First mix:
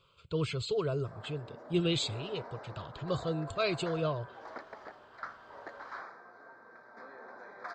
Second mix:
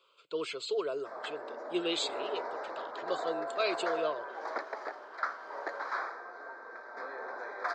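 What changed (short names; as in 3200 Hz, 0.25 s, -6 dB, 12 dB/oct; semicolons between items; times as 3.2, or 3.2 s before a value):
background +8.5 dB; master: add HPF 330 Hz 24 dB/oct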